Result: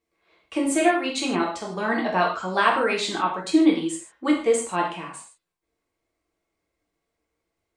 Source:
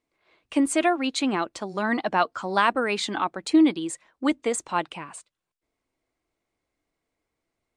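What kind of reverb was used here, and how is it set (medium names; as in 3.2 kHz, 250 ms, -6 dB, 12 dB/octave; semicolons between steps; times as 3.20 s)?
gated-style reverb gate 180 ms falling, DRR -3 dB; trim -3 dB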